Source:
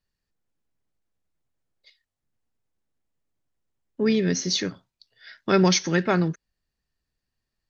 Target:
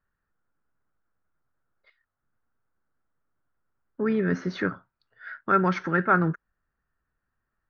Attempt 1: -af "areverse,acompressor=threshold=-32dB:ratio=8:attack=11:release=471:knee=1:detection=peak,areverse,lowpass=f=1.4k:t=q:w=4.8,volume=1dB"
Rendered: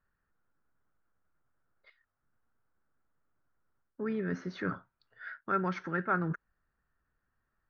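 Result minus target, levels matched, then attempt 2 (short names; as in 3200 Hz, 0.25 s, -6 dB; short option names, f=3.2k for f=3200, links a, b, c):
compressor: peak gain reduction +9 dB
-af "areverse,acompressor=threshold=-21.5dB:ratio=8:attack=11:release=471:knee=1:detection=peak,areverse,lowpass=f=1.4k:t=q:w=4.8,volume=1dB"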